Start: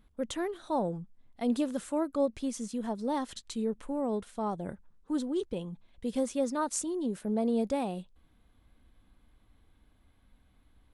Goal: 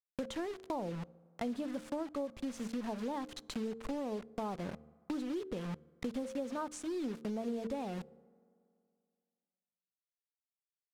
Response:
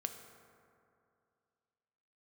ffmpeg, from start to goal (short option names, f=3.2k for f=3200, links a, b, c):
-filter_complex "[0:a]acrusher=bits=6:mix=0:aa=0.000001,bandreject=f=75.54:t=h:w=4,bandreject=f=151.08:t=h:w=4,bandreject=f=226.62:t=h:w=4,bandreject=f=302.16:t=h:w=4,bandreject=f=377.7:t=h:w=4,bandreject=f=453.24:t=h:w=4,bandreject=f=528.78:t=h:w=4,acompressor=threshold=-43dB:ratio=6,aemphasis=mode=reproduction:type=50fm,asplit=2[a][b];[1:a]atrim=start_sample=2205[c];[b][c]afir=irnorm=-1:irlink=0,volume=-15.5dB[d];[a][d]amix=inputs=2:normalize=0,volume=5.5dB"